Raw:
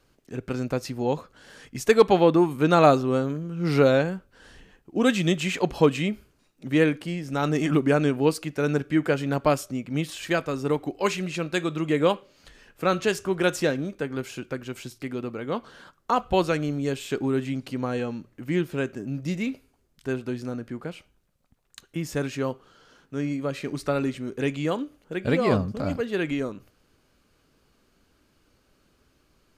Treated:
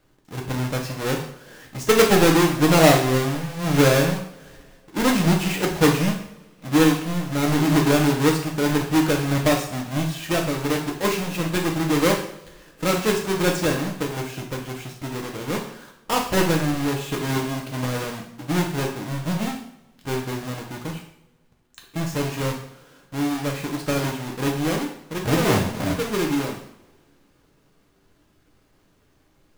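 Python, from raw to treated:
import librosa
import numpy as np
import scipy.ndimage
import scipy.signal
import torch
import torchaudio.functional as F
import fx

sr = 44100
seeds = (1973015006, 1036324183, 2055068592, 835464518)

y = fx.halfwave_hold(x, sr)
y = fx.rev_double_slope(y, sr, seeds[0], early_s=0.61, late_s=2.7, knee_db=-27, drr_db=0.0)
y = y * librosa.db_to_amplitude(-4.5)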